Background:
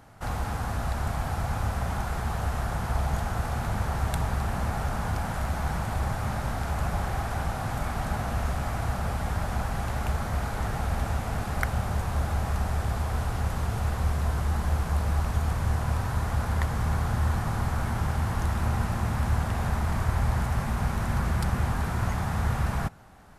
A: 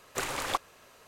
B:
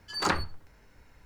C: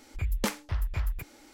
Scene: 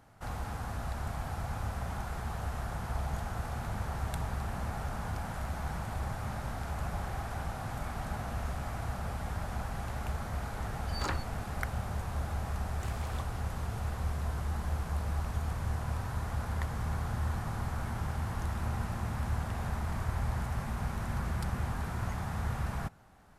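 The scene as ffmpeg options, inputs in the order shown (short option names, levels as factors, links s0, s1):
-filter_complex "[0:a]volume=0.422[s0];[2:a]atrim=end=1.25,asetpts=PTS-STARTPTS,volume=0.355,afade=t=in:d=0.004:c=hsin,afade=t=out:st=1.246:d=0.004:c=hsin,adelay=10790[s1];[1:a]atrim=end=1.07,asetpts=PTS-STARTPTS,volume=0.158,afade=t=in:d=0.004:c=hsin,afade=t=out:st=1.066:d=0.004:c=hsin,adelay=12650[s2];[s0][s1][s2]amix=inputs=3:normalize=0"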